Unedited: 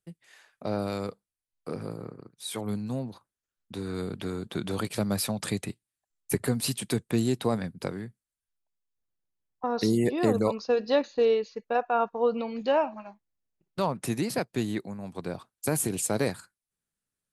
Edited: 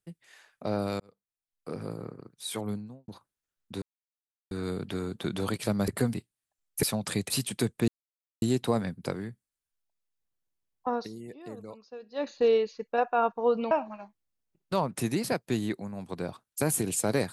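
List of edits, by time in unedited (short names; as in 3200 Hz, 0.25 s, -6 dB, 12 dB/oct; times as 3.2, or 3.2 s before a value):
1–1.93 fade in
2.56–3.08 studio fade out
3.82 insert silence 0.69 s
5.19–5.66 swap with 6.35–6.61
7.19 insert silence 0.54 s
9.7–11.07 dip -18.5 dB, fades 0.15 s
12.48–12.77 cut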